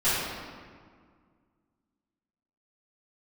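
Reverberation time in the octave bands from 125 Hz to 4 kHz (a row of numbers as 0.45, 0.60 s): 2.3, 2.4, 1.9, 1.9, 1.5, 1.1 s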